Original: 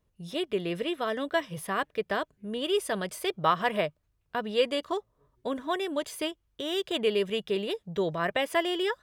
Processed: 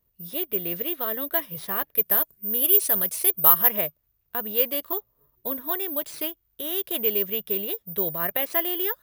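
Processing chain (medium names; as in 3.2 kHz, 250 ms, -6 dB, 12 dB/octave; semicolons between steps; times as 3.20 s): careless resampling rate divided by 3×, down none, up zero stuff; 1.95–3.70 s: peaking EQ 11 kHz +15 dB 0.89 oct; trim -2.5 dB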